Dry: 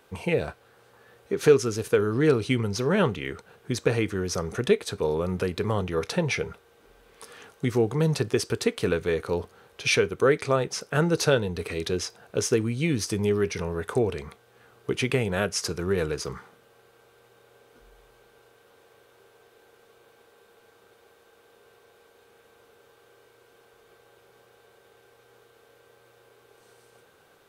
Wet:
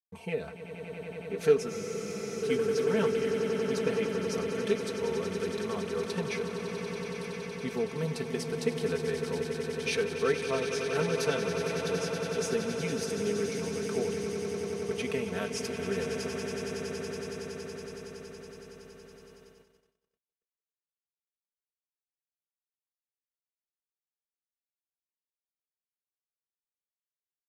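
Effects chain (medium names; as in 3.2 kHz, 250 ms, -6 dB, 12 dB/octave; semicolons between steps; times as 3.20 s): Chebyshev shaper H 3 -21 dB, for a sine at -7 dBFS; comb 4.5 ms, depth 78%; echo with a slow build-up 93 ms, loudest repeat 8, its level -10.5 dB; gate -45 dBFS, range -56 dB; spectral freeze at 1.71 s, 0.72 s; trim -9 dB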